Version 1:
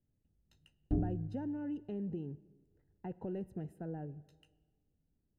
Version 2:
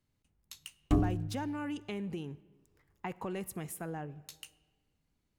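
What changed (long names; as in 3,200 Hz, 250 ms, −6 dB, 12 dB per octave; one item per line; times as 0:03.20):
background +5.0 dB
master: remove moving average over 39 samples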